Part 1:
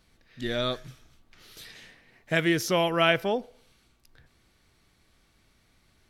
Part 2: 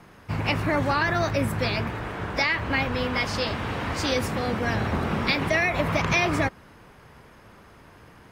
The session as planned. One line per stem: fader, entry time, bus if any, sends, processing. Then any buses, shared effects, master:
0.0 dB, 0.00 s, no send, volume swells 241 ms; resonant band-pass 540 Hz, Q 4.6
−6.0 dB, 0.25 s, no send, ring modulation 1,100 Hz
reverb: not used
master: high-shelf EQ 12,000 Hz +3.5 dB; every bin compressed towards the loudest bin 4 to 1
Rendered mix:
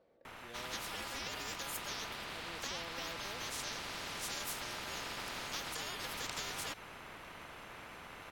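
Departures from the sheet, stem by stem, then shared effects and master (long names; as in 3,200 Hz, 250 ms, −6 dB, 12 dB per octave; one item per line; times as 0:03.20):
stem 1 0.0 dB → −9.0 dB
stem 2 −6.0 dB → −15.5 dB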